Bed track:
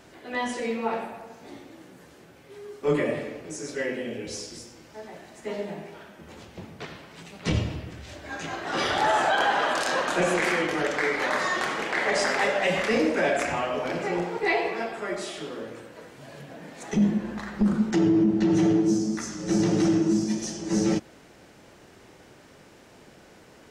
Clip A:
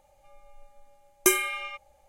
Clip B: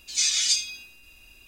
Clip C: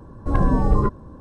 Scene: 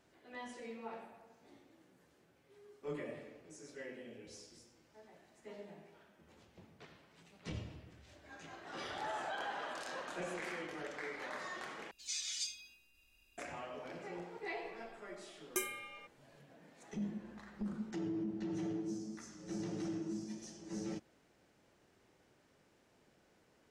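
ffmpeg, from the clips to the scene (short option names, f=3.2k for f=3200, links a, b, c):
-filter_complex "[0:a]volume=-18.5dB,asplit=2[a][b];[a]atrim=end=11.914[c];[2:a]atrim=end=1.47,asetpts=PTS-STARTPTS,volume=-17.5dB[d];[b]atrim=start=13.376[e];[1:a]atrim=end=2.08,asetpts=PTS-STARTPTS,volume=-16dB,afade=t=in:d=0.004:c=hsin,afade=t=out:st=2.076:d=0.004:c=hsin,adelay=14300[f];[c][d]acrossfade=d=0.004:c1=hsin:c2=hsin[g];[g][e]acrossfade=d=0.004:c1=hsin:c2=hsin[h];[h][f]amix=inputs=2:normalize=0"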